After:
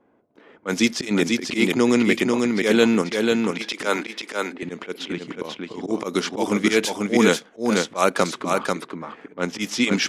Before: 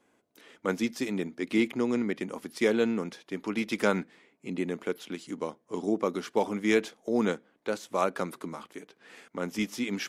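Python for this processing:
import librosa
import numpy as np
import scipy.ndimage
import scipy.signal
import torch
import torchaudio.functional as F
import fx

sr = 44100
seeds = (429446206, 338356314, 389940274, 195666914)

p1 = fx.highpass(x, sr, hz=280.0, slope=24, at=(3.51, 4.63))
p2 = fx.level_steps(p1, sr, step_db=16)
p3 = p1 + (p2 * librosa.db_to_amplitude(1.0))
p4 = fx.high_shelf(p3, sr, hz=2500.0, db=10.5)
p5 = fx.env_lowpass(p4, sr, base_hz=920.0, full_db=-19.0)
p6 = fx.auto_swell(p5, sr, attack_ms=122.0)
p7 = p6 + fx.echo_single(p6, sr, ms=491, db=-3.5, dry=0)
y = p7 * librosa.db_to_amplitude(5.5)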